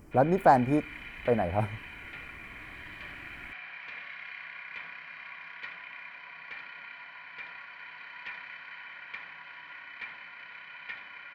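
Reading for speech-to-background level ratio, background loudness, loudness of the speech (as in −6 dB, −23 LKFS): 16.0 dB, −42.5 LKFS, −26.5 LKFS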